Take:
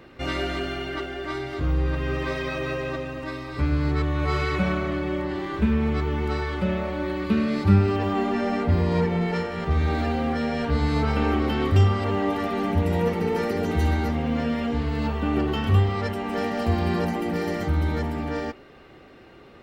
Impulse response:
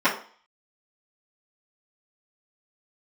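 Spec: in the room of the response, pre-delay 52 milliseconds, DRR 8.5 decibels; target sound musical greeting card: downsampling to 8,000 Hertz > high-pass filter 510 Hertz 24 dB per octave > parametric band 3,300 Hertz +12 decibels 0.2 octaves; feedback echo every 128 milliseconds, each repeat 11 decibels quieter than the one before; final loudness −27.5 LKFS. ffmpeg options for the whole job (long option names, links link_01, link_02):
-filter_complex "[0:a]aecho=1:1:128|256|384:0.282|0.0789|0.0221,asplit=2[link_01][link_02];[1:a]atrim=start_sample=2205,adelay=52[link_03];[link_02][link_03]afir=irnorm=-1:irlink=0,volume=-26.5dB[link_04];[link_01][link_04]amix=inputs=2:normalize=0,aresample=8000,aresample=44100,highpass=frequency=510:width=0.5412,highpass=frequency=510:width=1.3066,equalizer=frequency=3300:width_type=o:width=0.2:gain=12,volume=3dB"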